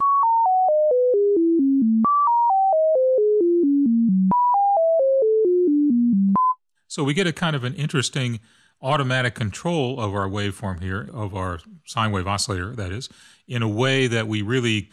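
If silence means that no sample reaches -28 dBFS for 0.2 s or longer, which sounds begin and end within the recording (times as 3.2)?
6.91–8.37
8.83–11.56
11.89–13.06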